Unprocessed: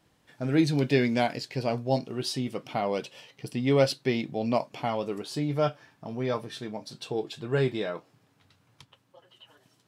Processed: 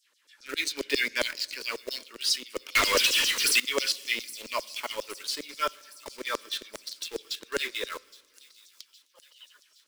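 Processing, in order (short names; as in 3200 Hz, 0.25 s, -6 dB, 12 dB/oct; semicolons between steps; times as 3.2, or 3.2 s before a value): LFO high-pass saw down 7.4 Hz 590–7200 Hz; in parallel at -5 dB: requantised 6-bit, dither none; 2.75–3.6 on the sum: power-law curve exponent 0.35; fixed phaser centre 310 Hz, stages 4; thin delay 0.816 s, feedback 60%, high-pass 4900 Hz, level -15.5 dB; on a send at -23 dB: reverb RT60 1.6 s, pre-delay 3 ms; on the sum: gain +1.5 dB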